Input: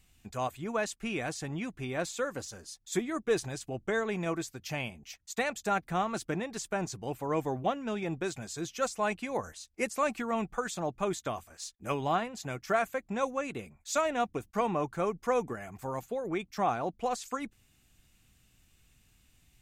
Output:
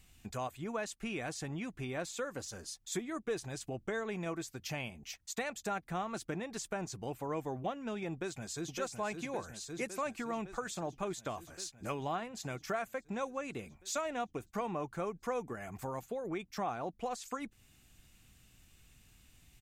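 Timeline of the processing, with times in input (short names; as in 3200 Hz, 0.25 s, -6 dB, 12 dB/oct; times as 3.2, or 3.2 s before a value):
8.12–8.73 echo throw 0.56 s, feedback 70%, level -5 dB
whole clip: compressor 2:1, threshold -44 dBFS; gain +2.5 dB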